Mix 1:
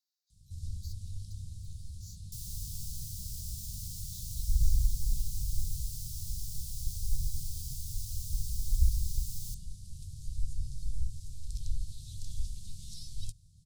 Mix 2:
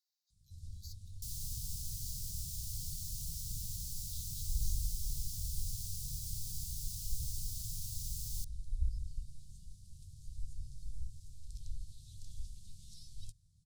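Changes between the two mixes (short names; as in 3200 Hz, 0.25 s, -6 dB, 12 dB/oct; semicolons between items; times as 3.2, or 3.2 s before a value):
first sound -9.0 dB; second sound: entry -1.10 s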